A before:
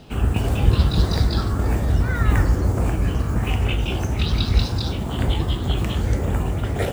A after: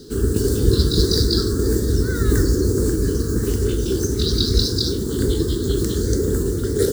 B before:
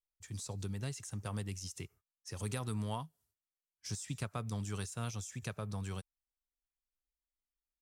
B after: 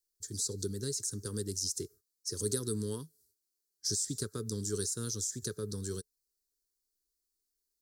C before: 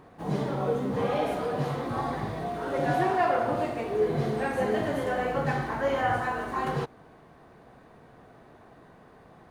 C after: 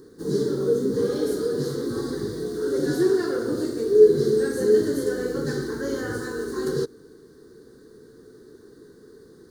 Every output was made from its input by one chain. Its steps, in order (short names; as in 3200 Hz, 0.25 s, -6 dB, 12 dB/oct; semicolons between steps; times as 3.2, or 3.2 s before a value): EQ curve 170 Hz 0 dB, 430 Hz +14 dB, 680 Hz -21 dB, 1600 Hz +1 dB, 2500 Hz -20 dB, 4300 Hz +13 dB; gain -1 dB